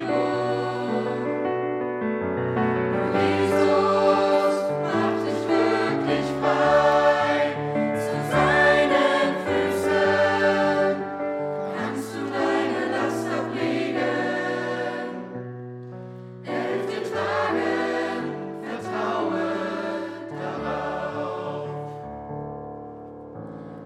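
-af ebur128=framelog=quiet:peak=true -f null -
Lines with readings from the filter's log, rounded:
Integrated loudness:
  I:         -23.4 LUFS
  Threshold: -34.0 LUFS
Loudness range:
  LRA:         8.6 LU
  Threshold: -43.7 LUFS
  LRA low:   -29.0 LUFS
  LRA high:  -20.4 LUFS
True peak:
  Peak:       -7.6 dBFS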